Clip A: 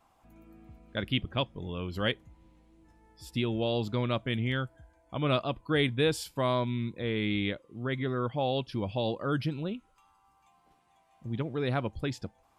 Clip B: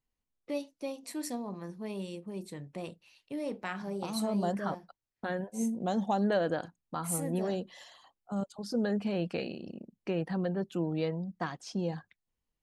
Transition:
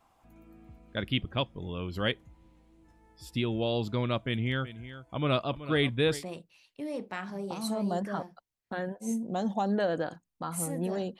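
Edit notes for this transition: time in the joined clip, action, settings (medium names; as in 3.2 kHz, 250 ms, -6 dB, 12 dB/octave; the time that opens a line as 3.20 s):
clip A
4.22–6.24 s: delay 376 ms -14 dB
6.20 s: go over to clip B from 2.72 s, crossfade 0.08 s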